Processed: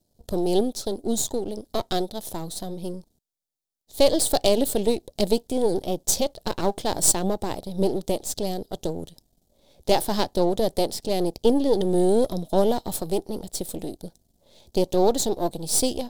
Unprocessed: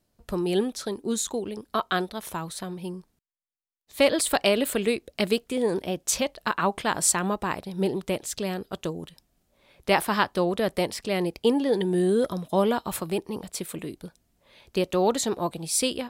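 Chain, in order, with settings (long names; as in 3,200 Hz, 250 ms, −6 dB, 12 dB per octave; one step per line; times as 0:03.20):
gain on one half-wave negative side −12 dB
flat-topped bell 1,700 Hz −15 dB
level +6.5 dB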